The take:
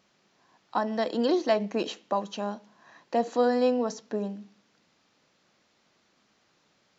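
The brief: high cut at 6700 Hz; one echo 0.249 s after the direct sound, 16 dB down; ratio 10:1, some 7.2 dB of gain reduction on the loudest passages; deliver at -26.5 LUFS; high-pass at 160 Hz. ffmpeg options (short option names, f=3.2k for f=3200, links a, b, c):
-af "highpass=160,lowpass=6.7k,acompressor=threshold=-26dB:ratio=10,aecho=1:1:249:0.158,volume=6.5dB"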